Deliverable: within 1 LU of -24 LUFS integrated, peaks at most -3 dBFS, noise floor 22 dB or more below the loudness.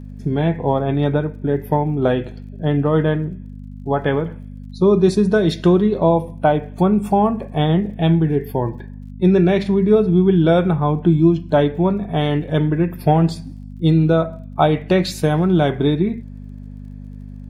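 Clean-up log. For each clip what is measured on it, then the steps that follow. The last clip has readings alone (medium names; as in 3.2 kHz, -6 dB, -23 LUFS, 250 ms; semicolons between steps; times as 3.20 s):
tick rate 41 per s; hum 50 Hz; highest harmonic 250 Hz; hum level -33 dBFS; loudness -17.5 LUFS; peak level -2.0 dBFS; loudness target -24.0 LUFS
-> de-click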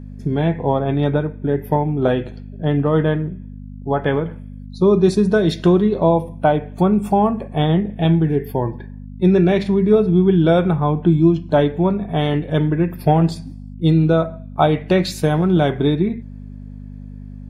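tick rate 0.057 per s; hum 50 Hz; highest harmonic 250 Hz; hum level -33 dBFS
-> de-hum 50 Hz, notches 5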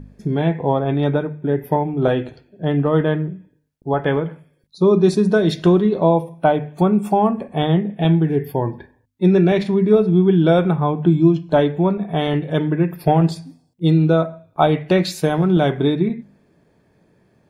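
hum not found; loudness -18.0 LUFS; peak level -2.5 dBFS; loudness target -24.0 LUFS
-> trim -6 dB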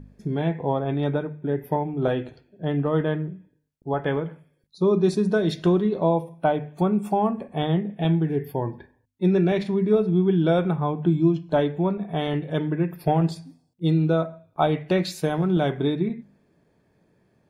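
loudness -24.0 LUFS; peak level -8.5 dBFS; noise floor -66 dBFS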